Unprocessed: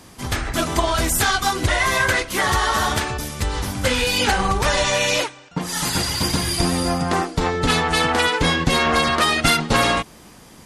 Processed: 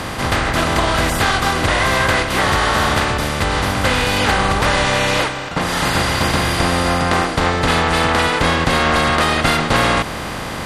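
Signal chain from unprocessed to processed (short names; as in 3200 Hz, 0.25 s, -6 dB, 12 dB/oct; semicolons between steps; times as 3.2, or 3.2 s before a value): per-bin compression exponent 0.4; high shelf 4600 Hz -9 dB; gain -2.5 dB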